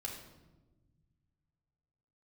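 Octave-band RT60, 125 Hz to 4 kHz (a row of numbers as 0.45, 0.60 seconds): 2.9, 2.2, 1.4, 1.0, 0.80, 0.75 seconds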